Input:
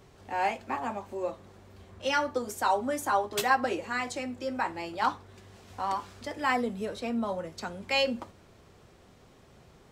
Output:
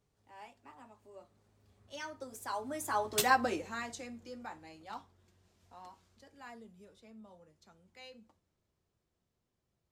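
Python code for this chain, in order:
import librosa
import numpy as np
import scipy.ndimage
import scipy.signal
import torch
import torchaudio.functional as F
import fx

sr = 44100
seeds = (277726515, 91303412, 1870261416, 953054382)

y = fx.doppler_pass(x, sr, speed_mps=21, closest_m=5.5, pass_at_s=3.28)
y = fx.bass_treble(y, sr, bass_db=4, treble_db=6)
y = y * librosa.db_to_amplitude(-2.5)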